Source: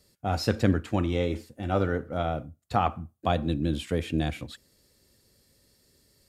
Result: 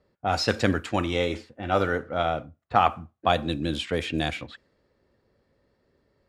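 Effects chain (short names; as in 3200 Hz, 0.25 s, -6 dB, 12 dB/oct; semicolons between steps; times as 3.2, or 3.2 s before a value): low-pass opened by the level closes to 1100 Hz, open at -21 dBFS; low shelf 450 Hz -12 dB; gain +8 dB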